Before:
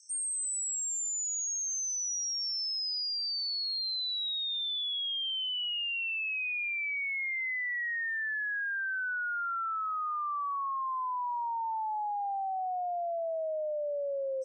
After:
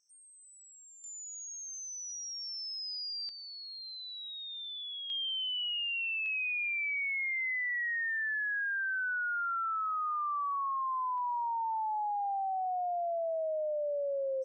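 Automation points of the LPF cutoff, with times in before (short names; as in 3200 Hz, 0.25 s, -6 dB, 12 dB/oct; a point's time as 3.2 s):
2400 Hz
from 1.04 s 4000 Hz
from 3.29 s 2300 Hz
from 5.1 s 4000 Hz
from 6.26 s 7300 Hz
from 11.18 s 4100 Hz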